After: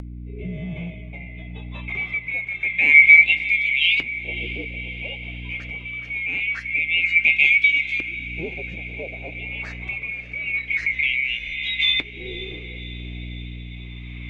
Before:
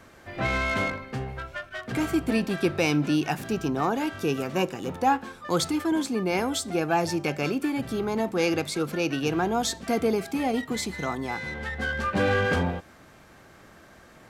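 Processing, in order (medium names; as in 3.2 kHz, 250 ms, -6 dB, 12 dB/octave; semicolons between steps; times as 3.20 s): split-band scrambler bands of 2 kHz; resonant high shelf 1.7 kHz +7.5 dB, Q 3; LFO low-pass saw up 0.25 Hz 310–4100 Hz; flange 0.38 Hz, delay 3.1 ms, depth 4.7 ms, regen -57%; hum 60 Hz, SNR 22 dB; upward compressor, threshold -19 dBFS; rotary cabinet horn 0.9 Hz; on a send: echo that smears into a reverb 574 ms, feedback 65%, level -15.5 dB; on the sum: trim -2.5 dB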